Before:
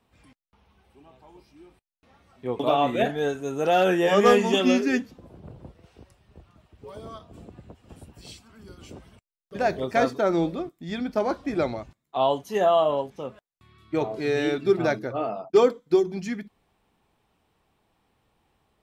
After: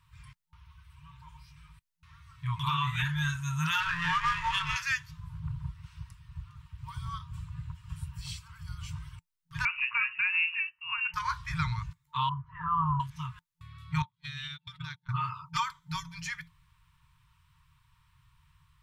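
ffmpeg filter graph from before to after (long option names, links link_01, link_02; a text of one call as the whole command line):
ffmpeg -i in.wav -filter_complex "[0:a]asettb=1/sr,asplit=3[link_01][link_02][link_03];[link_01]atrim=end=3.804[link_04];[link_02]atrim=start=3.8:end=4.76,asetpts=PTS-STARTPTS,afade=type=in:duration=0.004:curve=qsin,afade=type=out:start_time=0.956:duration=0.004:curve=qsin,aeval=exprs='val(0)+0.5*0.0398*sgn(val(0))':channel_layout=same,highshelf=frequency=9100:gain=11.5,adynamicsmooth=sensitivity=0.5:basefreq=1600[link_05];[link_03]atrim=start=4.756[link_06];[link_04][link_05]acrossfade=duration=0.004:curve1=hsin:curve2=qsin[link_07];[link_07][link_06]acrossfade=duration=0.004:curve1=qsin:curve2=hsin,asettb=1/sr,asplit=3[link_08][link_09][link_10];[link_08]atrim=end=9.654[link_11];[link_09]atrim=start=9.65:end=11.14,asetpts=PTS-STARTPTS,afade=type=in:duration=0.004:curve=qsin,afade=type=out:start_time=1.486:duration=0.004:curve=qsin,lowshelf=frequency=290:gain=-10.5,lowpass=frequency=2600:width_type=q:width=0.5098,lowpass=frequency=2600:width_type=q:width=0.6013,lowpass=frequency=2600:width_type=q:width=0.9,lowpass=frequency=2600:width_type=q:width=2.563,afreqshift=-3000[link_12];[link_10]atrim=start=11.136[link_13];[link_11][link_12]acrossfade=duration=0.004:curve1=hsin:curve2=qsin[link_14];[link_14][link_13]acrossfade=duration=0.004:curve1=qsin:curve2=hsin,asettb=1/sr,asplit=3[link_15][link_16][link_17];[link_15]atrim=end=12.294[link_18];[link_16]atrim=start=12.29:end=13,asetpts=PTS-STARTPTS,afade=type=in:duration=0.004:curve=qsin,afade=type=out:start_time=0.706:duration=0.004:curve=qsin,lowpass=frequency=1300:width=0.5412,lowpass=frequency=1300:width=1.3066,asubboost=boost=9.5:cutoff=160[link_19];[link_17]atrim=start=12.996[link_20];[link_18][link_19]acrossfade=duration=0.004:curve1=hsin:curve2=qsin[link_21];[link_21][link_20]acrossfade=duration=0.004:curve1=qsin:curve2=hsin,asettb=1/sr,asplit=3[link_22][link_23][link_24];[link_22]atrim=end=14.024[link_25];[link_23]atrim=start=14.02:end=15.09,asetpts=PTS-STARTPTS,afade=type=in:duration=0.004:curve=qsin,afade=type=out:start_time=1.066:duration=0.004:curve=qsin,agate=range=-44dB:threshold=-26dB:ratio=16:release=100:detection=peak,acompressor=threshold=-35dB:ratio=16:attack=3.2:release=140:knee=1:detection=peak,equalizer=frequency=3400:width=2.7:gain=14.5[link_26];[link_24]atrim=start=15.086[link_27];[link_25][link_26]acrossfade=duration=0.004:curve1=hsin:curve2=qsin[link_28];[link_28][link_27]acrossfade=duration=0.004:curve1=qsin:curve2=hsin,afftfilt=real='re*(1-between(b*sr/4096,170,900))':imag='im*(1-between(b*sr/4096,170,900))':win_size=4096:overlap=0.75,lowshelf=frequency=460:gain=7.5,alimiter=limit=-21.5dB:level=0:latency=1:release=207,volume=2.5dB" out.wav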